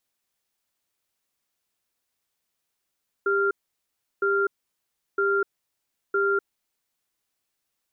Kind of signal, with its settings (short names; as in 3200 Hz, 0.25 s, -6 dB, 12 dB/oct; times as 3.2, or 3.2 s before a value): cadence 397 Hz, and 1390 Hz, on 0.25 s, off 0.71 s, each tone -22.5 dBFS 3.59 s